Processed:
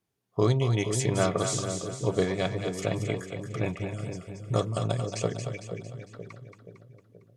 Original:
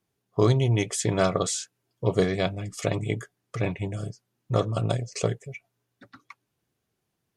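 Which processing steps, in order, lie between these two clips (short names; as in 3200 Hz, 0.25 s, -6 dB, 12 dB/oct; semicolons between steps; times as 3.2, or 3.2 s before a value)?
4.1–4.79 bell 8700 Hz +10.5 dB 1.2 oct; split-band echo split 520 Hz, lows 0.477 s, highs 0.227 s, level -6.5 dB; gain -3 dB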